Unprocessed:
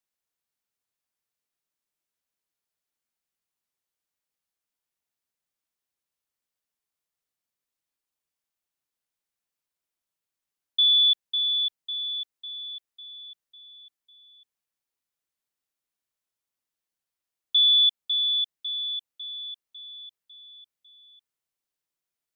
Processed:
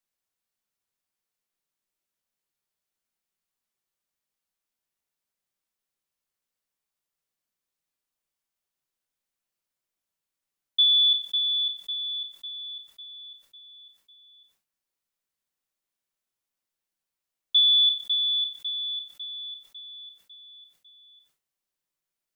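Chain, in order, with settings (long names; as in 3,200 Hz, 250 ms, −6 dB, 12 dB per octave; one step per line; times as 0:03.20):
on a send at −8 dB: convolution reverb RT60 0.35 s, pre-delay 5 ms
on the sum: level that may fall only so fast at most 140 dB per second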